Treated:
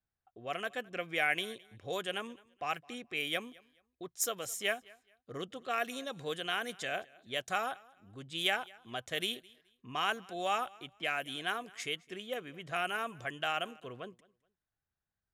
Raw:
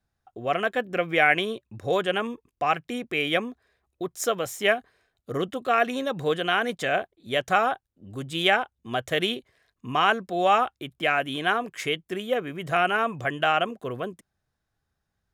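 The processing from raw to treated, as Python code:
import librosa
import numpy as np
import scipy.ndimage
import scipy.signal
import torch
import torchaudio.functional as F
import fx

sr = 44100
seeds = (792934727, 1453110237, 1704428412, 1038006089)

y = F.preemphasis(torch.from_numpy(x), 0.8).numpy()
y = fx.env_lowpass(y, sr, base_hz=2400.0, full_db=-31.5)
y = fx.echo_feedback(y, sr, ms=213, feedback_pct=25, wet_db=-24)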